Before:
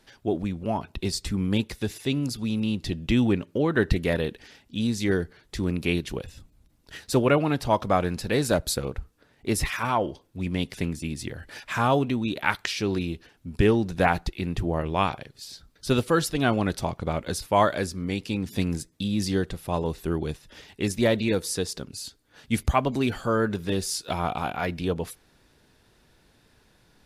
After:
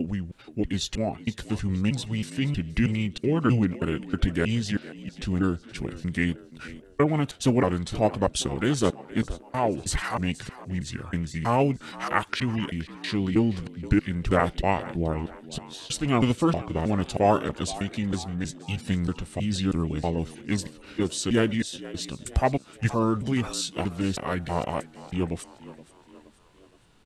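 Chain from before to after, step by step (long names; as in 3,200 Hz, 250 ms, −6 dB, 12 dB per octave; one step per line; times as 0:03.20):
slices reordered back to front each 318 ms, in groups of 2
echo with shifted repeats 472 ms, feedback 47%, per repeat +66 Hz, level −17.5 dB
formants moved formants −4 semitones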